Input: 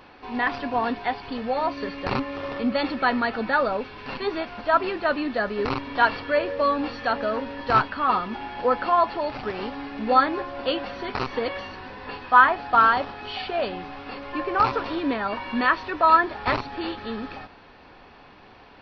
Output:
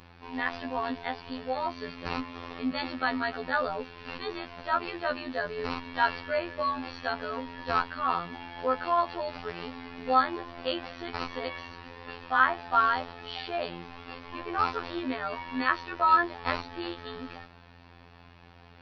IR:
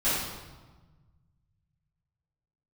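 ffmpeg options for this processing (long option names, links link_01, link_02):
-af "aeval=exprs='val(0)+0.00562*(sin(2*PI*50*n/s)+sin(2*PI*2*50*n/s)/2+sin(2*PI*3*50*n/s)/3+sin(2*PI*4*50*n/s)/4+sin(2*PI*5*50*n/s)/5)':channel_layout=same,highshelf=frequency=2600:gain=5,afftfilt=real='hypot(re,im)*cos(PI*b)':imag='0':win_size=2048:overlap=0.75,volume=-4dB"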